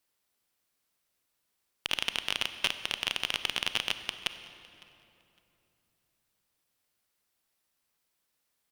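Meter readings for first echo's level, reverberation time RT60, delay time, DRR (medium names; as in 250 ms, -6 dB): -23.5 dB, 3.0 s, 558 ms, 10.5 dB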